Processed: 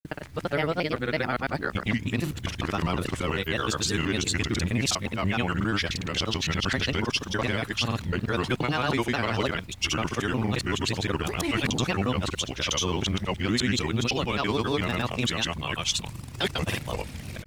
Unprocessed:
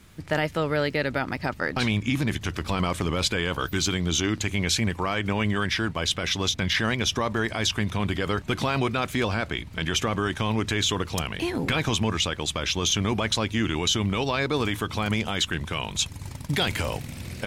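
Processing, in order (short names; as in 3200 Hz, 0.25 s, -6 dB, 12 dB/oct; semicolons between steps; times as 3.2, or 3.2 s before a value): local time reversal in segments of 0.196 s; added noise blue -64 dBFS; grains, pitch spread up and down by 3 st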